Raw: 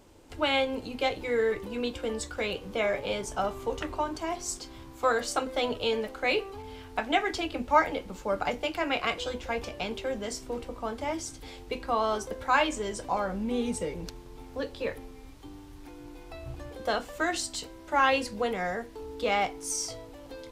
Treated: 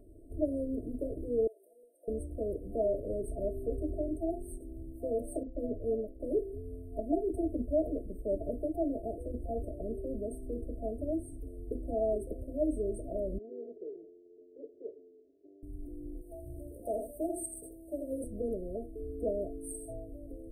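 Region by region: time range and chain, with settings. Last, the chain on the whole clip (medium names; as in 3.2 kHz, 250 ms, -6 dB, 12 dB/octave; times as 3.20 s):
1.47–2.08 s: high-pass 760 Hz 24 dB/octave + compression 2:1, threshold -44 dBFS
5.43–6.20 s: peaking EQ 3.7 kHz -12.5 dB 2.7 oct + three bands expanded up and down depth 100%
13.38–15.63 s: comb filter that takes the minimum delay 0.53 ms + ladder band-pass 460 Hz, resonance 65%
16.21–18.24 s: tilt EQ +2.5 dB/octave + delay 83 ms -6.5 dB
whole clip: FFT band-reject 690–8200 Hz; tilt EQ -1.5 dB/octave; comb 2.9 ms, depth 58%; trim -4 dB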